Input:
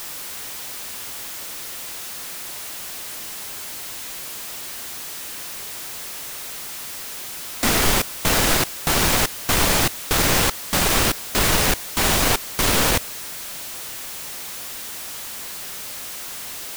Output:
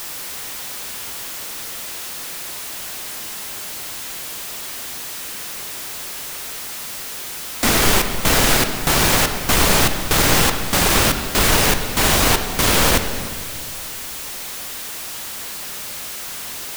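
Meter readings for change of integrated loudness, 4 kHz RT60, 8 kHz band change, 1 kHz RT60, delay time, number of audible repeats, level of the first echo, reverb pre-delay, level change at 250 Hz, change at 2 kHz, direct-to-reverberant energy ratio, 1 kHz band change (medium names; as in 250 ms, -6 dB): +3.0 dB, 1.9 s, +2.5 dB, 1.9 s, no echo, no echo, no echo, 20 ms, +3.5 dB, +3.5 dB, 6.5 dB, +3.5 dB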